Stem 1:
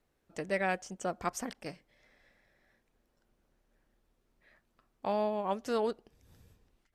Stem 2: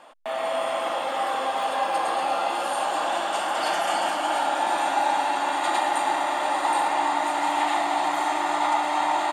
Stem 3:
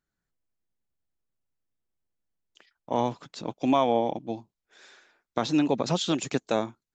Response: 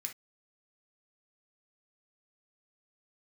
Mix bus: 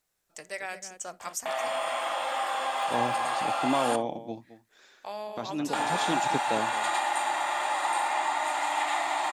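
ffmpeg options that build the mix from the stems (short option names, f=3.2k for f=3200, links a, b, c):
-filter_complex "[0:a]bass=f=250:g=-1,treble=f=4k:g=11,volume=-4dB,asplit=4[a][b][c][d];[b]volume=-8.5dB[e];[c]volume=-14dB[f];[1:a]adelay=1200,volume=2dB,asplit=3[g][h][i];[g]atrim=end=3.96,asetpts=PTS-STARTPTS,afade=t=out:st=3.956:d=0.004:c=hsin[j];[h]atrim=start=3.96:end=5.73,asetpts=PTS-STARTPTS,volume=0[k];[i]atrim=start=5.73,asetpts=PTS-STARTPTS,afade=t=in:d=0.004:c=hsin[l];[j][k][l]concat=n=3:v=0:a=1,asplit=2[m][n];[n]volume=-9.5dB[o];[2:a]volume=-4.5dB,asplit=2[p][q];[q]volume=-15dB[r];[d]apad=whole_len=306382[s];[p][s]sidechaincompress=threshold=-38dB:ratio=8:attack=9.3:release=222[t];[a][m]amix=inputs=2:normalize=0,highpass=640,acompressor=threshold=-33dB:ratio=2.5,volume=0dB[u];[3:a]atrim=start_sample=2205[v];[e][o]amix=inputs=2:normalize=0[w];[w][v]afir=irnorm=-1:irlink=0[x];[f][r]amix=inputs=2:normalize=0,aecho=0:1:219:1[y];[t][u][x][y]amix=inputs=4:normalize=0"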